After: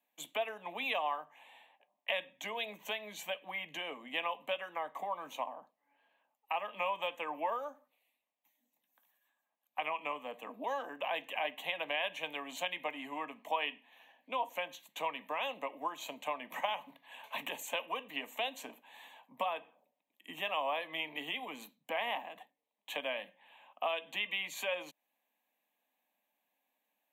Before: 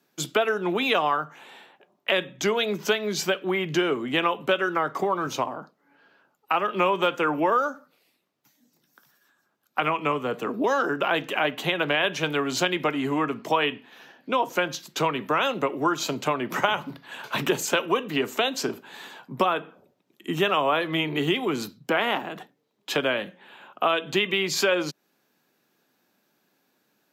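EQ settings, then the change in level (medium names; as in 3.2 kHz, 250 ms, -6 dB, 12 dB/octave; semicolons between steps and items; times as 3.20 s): high-pass 270 Hz 24 dB/octave; static phaser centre 1.4 kHz, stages 6; -9.0 dB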